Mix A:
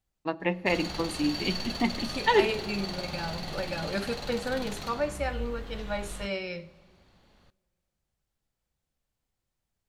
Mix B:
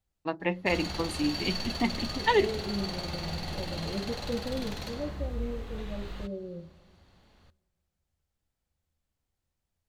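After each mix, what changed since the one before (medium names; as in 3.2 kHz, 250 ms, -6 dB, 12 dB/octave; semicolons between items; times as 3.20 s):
first voice: send off; second voice: add inverse Chebyshev low-pass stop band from 2.8 kHz, stop band 80 dB; master: add peaking EQ 80 Hz +11 dB 0.25 oct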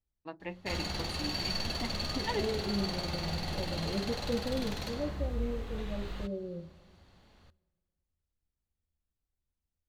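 first voice -11.5 dB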